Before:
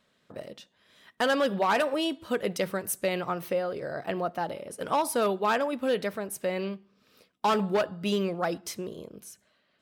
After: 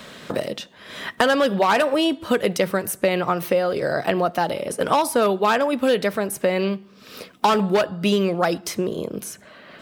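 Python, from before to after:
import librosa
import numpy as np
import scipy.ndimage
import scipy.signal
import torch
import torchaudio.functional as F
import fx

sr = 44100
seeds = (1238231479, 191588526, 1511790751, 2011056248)

y = fx.band_squash(x, sr, depth_pct=70)
y = y * 10.0 ** (8.0 / 20.0)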